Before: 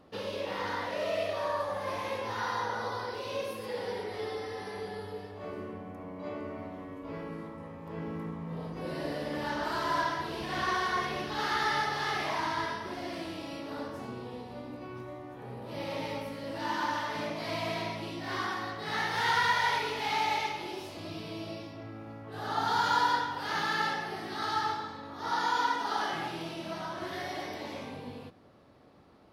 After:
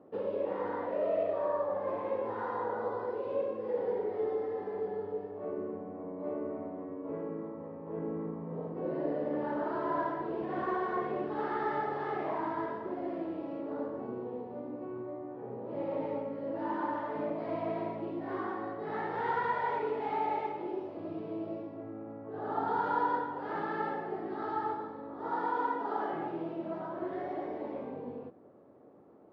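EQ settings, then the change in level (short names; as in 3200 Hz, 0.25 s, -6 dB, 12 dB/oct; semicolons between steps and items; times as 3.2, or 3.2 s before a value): HPF 98 Hz; LPF 1500 Hz 12 dB/oct; bell 410 Hz +13 dB 2.1 oct; -8.0 dB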